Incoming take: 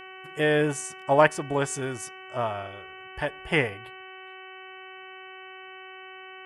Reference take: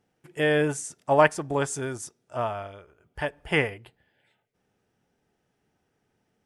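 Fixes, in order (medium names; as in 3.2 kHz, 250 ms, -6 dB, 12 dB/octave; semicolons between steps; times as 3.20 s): de-hum 376.7 Hz, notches 8; gain correction +4 dB, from 3.97 s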